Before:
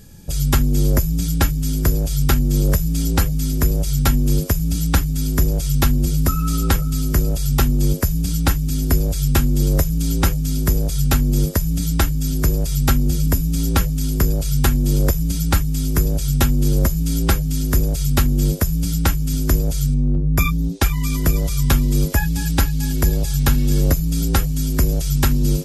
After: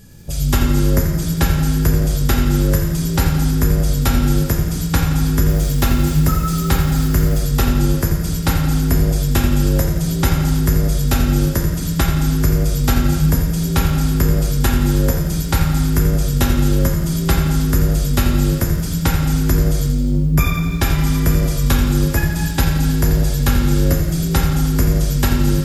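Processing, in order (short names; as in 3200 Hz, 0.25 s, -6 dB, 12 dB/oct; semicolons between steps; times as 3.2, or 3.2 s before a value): reverb, pre-delay 3 ms, DRR -1 dB; 5.48–7.39 requantised 6-bit, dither none; lo-fi delay 85 ms, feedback 55%, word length 7-bit, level -10 dB; gain -1 dB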